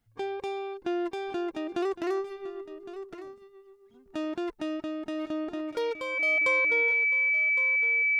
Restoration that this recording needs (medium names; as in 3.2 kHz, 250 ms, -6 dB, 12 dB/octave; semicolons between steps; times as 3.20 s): band-stop 2.3 kHz, Q 30; inverse comb 1111 ms -14 dB